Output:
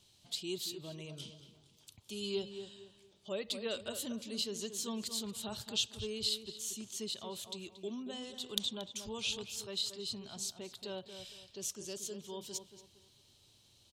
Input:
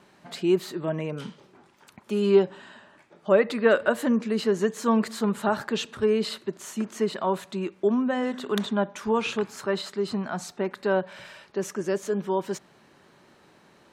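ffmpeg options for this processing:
ffmpeg -i in.wav -filter_complex "[0:a]firequalizer=gain_entry='entry(110,0);entry(160,-18);entry(1700,-26);entry(3200,1)':delay=0.05:min_phase=1,asplit=2[link_01][link_02];[link_02]adelay=230,lowpass=frequency=2200:poles=1,volume=-9dB,asplit=2[link_03][link_04];[link_04]adelay=230,lowpass=frequency=2200:poles=1,volume=0.33,asplit=2[link_05][link_06];[link_06]adelay=230,lowpass=frequency=2200:poles=1,volume=0.33,asplit=2[link_07][link_08];[link_08]adelay=230,lowpass=frequency=2200:poles=1,volume=0.33[link_09];[link_01][link_03][link_05][link_07][link_09]amix=inputs=5:normalize=0" out.wav

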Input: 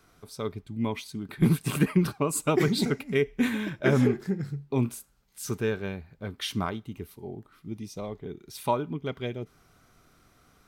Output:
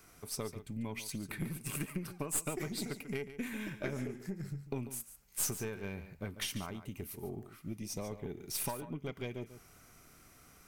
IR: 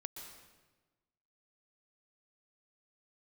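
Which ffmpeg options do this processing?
-filter_complex "[0:a]acompressor=threshold=-36dB:ratio=8,aexciter=amount=1.5:drive=4.4:freq=2000,aeval=exprs='(tanh(15.8*val(0)+0.7)-tanh(0.7))/15.8':channel_layout=same,asplit=2[link_01][link_02];[1:a]atrim=start_sample=2205,atrim=end_sample=4410,adelay=143[link_03];[link_02][link_03]afir=irnorm=-1:irlink=0,volume=-8dB[link_04];[link_01][link_04]amix=inputs=2:normalize=0,volume=3dB"

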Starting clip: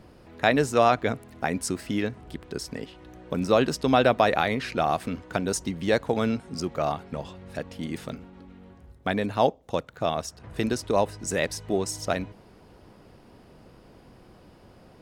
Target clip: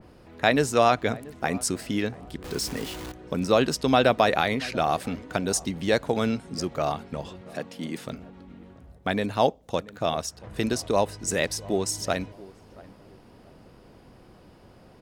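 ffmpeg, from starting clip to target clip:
ffmpeg -i in.wav -filter_complex "[0:a]asettb=1/sr,asplit=3[link_01][link_02][link_03];[link_01]atrim=end=2.444[link_04];[link_02]atrim=start=2.44:end=3.12,asetpts=PTS-STARTPTS,afade=type=in:duration=0.004:curve=qsin,afade=type=out:start_time=0.676:duration=0.004:curve=qsin,aeval=exprs='val(0)+0.5*0.0211*sgn(val(0))':channel_layout=same[link_05];[link_03]atrim=start=3.116[link_06];[link_04][link_05]acrossfade=duration=0.004:curve1=hsin:curve2=qsin[link_07];[link_07][link_06]acrossfade=duration=0.004:curve1=qsin:curve2=hsin,asettb=1/sr,asplit=3[link_08][link_09][link_10];[link_08]atrim=end=7.414[link_11];[link_09]atrim=start=7.41:end=8.07,asetpts=PTS-STARTPTS,afade=type=in:duration=0.004:curve=qsin,afade=type=out:start_time=0.656:duration=0.004:curve=qsin,highpass=frequency=150:width=0.5412,highpass=frequency=150:width=1.3066[link_12];[link_10]atrim=start=8.066[link_13];[link_11][link_12]acrossfade=duration=0.004:curve1=hsin:curve2=qsin[link_14];[link_14][link_13]acrossfade=duration=0.004:curve1=qsin:curve2=hsin,asplit=2[link_15][link_16];[link_16]adelay=683,lowpass=frequency=850:poles=1,volume=-19dB,asplit=2[link_17][link_18];[link_18]adelay=683,lowpass=frequency=850:poles=1,volume=0.38,asplit=2[link_19][link_20];[link_20]adelay=683,lowpass=frequency=850:poles=1,volume=0.38[link_21];[link_15][link_17][link_19][link_21]amix=inputs=4:normalize=0,adynamicequalizer=threshold=0.00891:dfrequency=2900:dqfactor=0.7:tfrequency=2900:tqfactor=0.7:attack=5:release=100:ratio=0.375:range=2:mode=boostabove:tftype=highshelf" out.wav

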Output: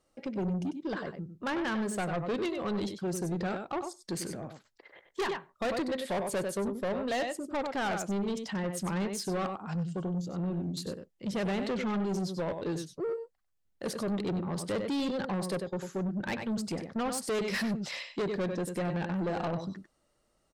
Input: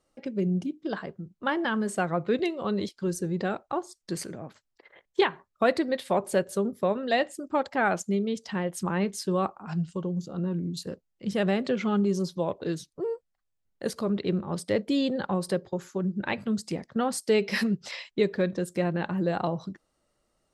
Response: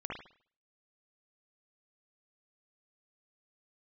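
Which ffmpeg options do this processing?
-af "aecho=1:1:96:0.335,asoftclip=type=tanh:threshold=-28dB"

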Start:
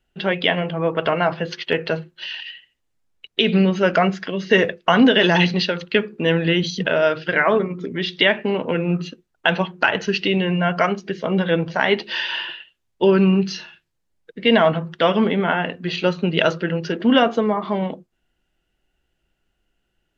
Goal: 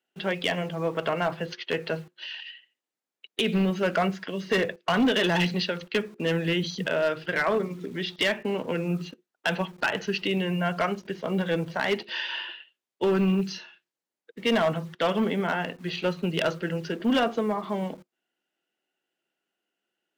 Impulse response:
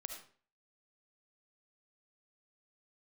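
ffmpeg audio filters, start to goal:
-filter_complex "[0:a]acrossover=split=220|1500[link_01][link_02][link_03];[link_01]acrusher=bits=7:mix=0:aa=0.000001[link_04];[link_04][link_02][link_03]amix=inputs=3:normalize=0,asoftclip=type=hard:threshold=-11dB,volume=-7dB"

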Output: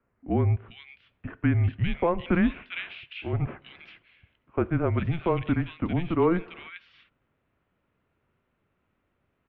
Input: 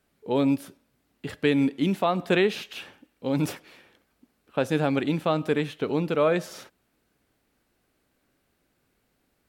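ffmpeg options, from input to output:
ffmpeg -i in.wav -filter_complex "[0:a]asettb=1/sr,asplit=3[link_01][link_02][link_03];[link_01]atrim=end=2.714[link_04];[link_02]atrim=start=2.71:end=3.33,asetpts=PTS-STARTPTS,afade=type=in:duration=0.004:curve=qsin,afade=type=out:start_time=0.616:duration=0.004:curve=qsin,tiltshelf=frequency=970:gain=-6.5[link_05];[link_03]atrim=start=3.326[link_06];[link_04][link_05]acrossfade=duration=0.004:curve1=hsin:curve2=qsin[link_07];[link_07][link_06]acrossfade=duration=0.004:curve1=qsin:curve2=hsin,acrossover=split=2300[link_08][link_09];[link_09]adelay=400[link_10];[link_08][link_10]amix=inputs=2:normalize=0,highpass=frequency=200:width_type=q:width=0.5412,highpass=frequency=200:width_type=q:width=1.307,lowpass=frequency=3100:width_type=q:width=0.5176,lowpass=frequency=3100:width_type=q:width=0.7071,lowpass=frequency=3100:width_type=q:width=1.932,afreqshift=-170" out.wav

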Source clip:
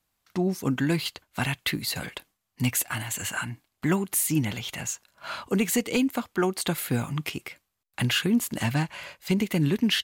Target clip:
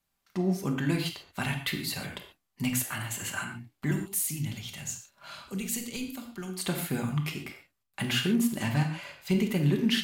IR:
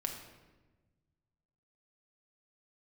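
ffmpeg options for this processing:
-filter_complex "[0:a]asettb=1/sr,asplit=3[link_01][link_02][link_03];[link_01]atrim=end=3.914[link_04];[link_02]atrim=start=3.91:end=6.59,asetpts=PTS-STARTPTS,afade=type=in:duration=0.004:curve=qsin,afade=type=out:start_time=2.676:duration=0.004:curve=qsin,acrossover=split=160|3000[link_05][link_06][link_07];[link_06]acompressor=threshold=-49dB:ratio=2[link_08];[link_05][link_08][link_07]amix=inputs=3:normalize=0[link_09];[link_03]atrim=start=6.586[link_10];[link_04][link_09]acrossfade=duration=0.004:curve1=hsin:curve2=qsin[link_11];[link_11][link_10]acrossfade=duration=0.004:curve1=qsin:curve2=hsin[link_12];[1:a]atrim=start_sample=2205,atrim=end_sample=6615[link_13];[link_12][link_13]afir=irnorm=-1:irlink=0,volume=-4dB"

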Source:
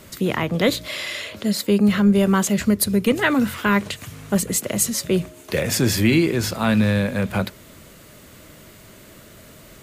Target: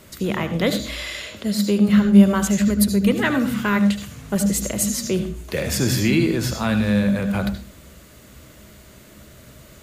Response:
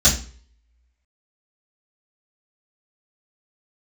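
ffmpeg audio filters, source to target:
-filter_complex "[0:a]asplit=2[link_01][link_02];[1:a]atrim=start_sample=2205,adelay=69[link_03];[link_02][link_03]afir=irnorm=-1:irlink=0,volume=-27dB[link_04];[link_01][link_04]amix=inputs=2:normalize=0,volume=-2.5dB"

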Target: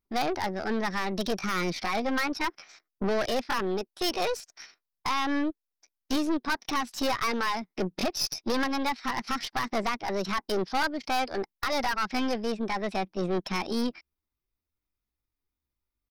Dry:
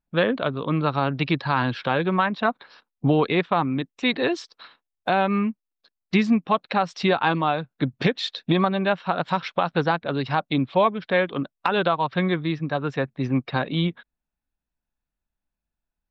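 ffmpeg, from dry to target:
ffmpeg -i in.wav -af "asetrate=62367,aresample=44100,atempo=0.707107,aeval=exprs='(tanh(15.8*val(0)+0.55)-tanh(0.55))/15.8':channel_layout=same,aexciter=amount=1.6:drive=1:freq=4300" out.wav

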